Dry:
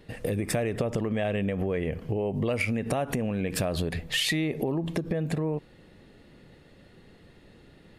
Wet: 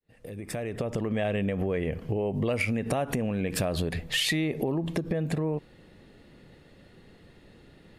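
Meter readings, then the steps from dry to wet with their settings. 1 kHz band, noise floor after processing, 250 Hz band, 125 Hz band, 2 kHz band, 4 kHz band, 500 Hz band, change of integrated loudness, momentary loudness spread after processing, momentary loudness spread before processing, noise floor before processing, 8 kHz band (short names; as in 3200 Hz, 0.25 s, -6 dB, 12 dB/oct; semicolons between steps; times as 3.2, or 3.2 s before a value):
-0.5 dB, -56 dBFS, -0.5 dB, -0.5 dB, -0.5 dB, 0.0 dB, -0.5 dB, -0.5 dB, 7 LU, 4 LU, -55 dBFS, -1.0 dB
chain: opening faded in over 1.17 s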